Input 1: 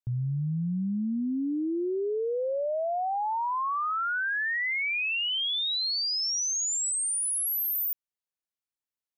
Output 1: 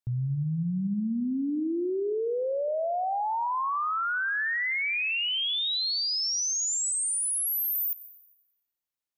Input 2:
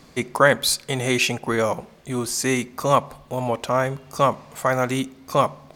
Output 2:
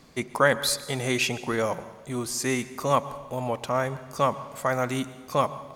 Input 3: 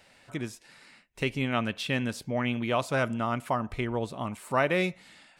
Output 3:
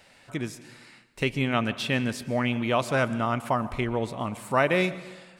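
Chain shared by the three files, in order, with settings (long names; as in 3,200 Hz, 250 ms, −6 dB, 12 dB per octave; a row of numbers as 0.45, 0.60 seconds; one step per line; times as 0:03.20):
dense smooth reverb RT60 1.3 s, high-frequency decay 0.75×, pre-delay 105 ms, DRR 15.5 dB
loudness normalisation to −27 LKFS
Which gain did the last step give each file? +0.5, −5.0, +3.0 decibels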